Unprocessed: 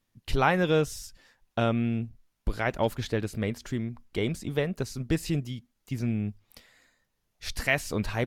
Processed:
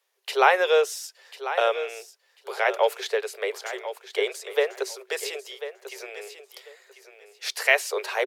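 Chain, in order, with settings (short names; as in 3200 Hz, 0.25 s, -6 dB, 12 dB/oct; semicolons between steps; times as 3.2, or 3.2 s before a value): Chebyshev high-pass 380 Hz, order 10; feedback echo 1.044 s, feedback 20%, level -12 dB; gain +6.5 dB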